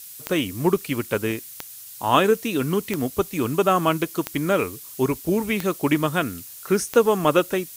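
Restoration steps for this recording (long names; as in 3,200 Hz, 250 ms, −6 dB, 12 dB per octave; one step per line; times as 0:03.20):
click removal
noise reduction from a noise print 26 dB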